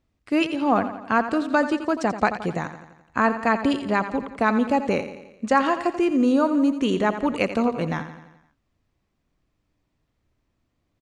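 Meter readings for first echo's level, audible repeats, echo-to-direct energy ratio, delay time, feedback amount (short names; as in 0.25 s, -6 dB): -11.5 dB, 5, -10.0 dB, 86 ms, 56%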